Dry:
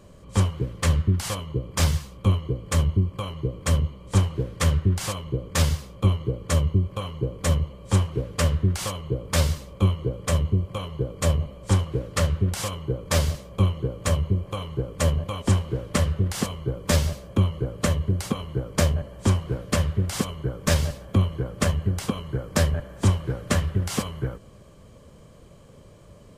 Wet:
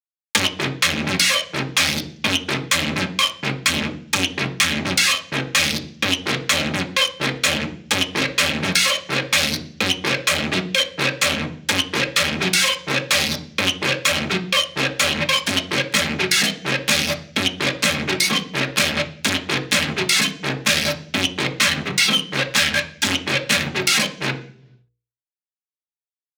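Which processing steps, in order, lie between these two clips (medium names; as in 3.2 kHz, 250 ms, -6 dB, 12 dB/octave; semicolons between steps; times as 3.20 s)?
spectral noise reduction 28 dB; 3.17–5.33 s: peaking EQ 450 Hz -11 dB 1.4 oct; 21.35–23.12 s: time-frequency box 790–9100 Hz +8 dB; fuzz box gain 45 dB, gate -42 dBFS; hum notches 60/120/180/240/300/360/420/480 Hz; transient shaper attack -5 dB, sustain 0 dB; frequency weighting D; reverberation RT60 0.40 s, pre-delay 3 ms, DRR 3.5 dB; three bands compressed up and down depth 100%; trim -6.5 dB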